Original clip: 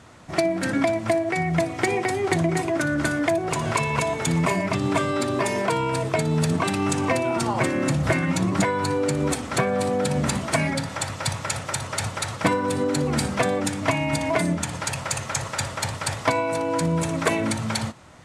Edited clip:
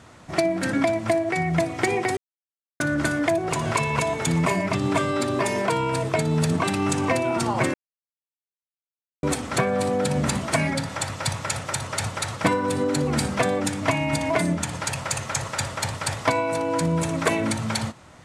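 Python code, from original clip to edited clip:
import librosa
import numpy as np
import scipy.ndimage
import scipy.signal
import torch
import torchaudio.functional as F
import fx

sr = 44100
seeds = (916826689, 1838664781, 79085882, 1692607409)

y = fx.edit(x, sr, fx.silence(start_s=2.17, length_s=0.63),
    fx.silence(start_s=7.74, length_s=1.49), tone=tone)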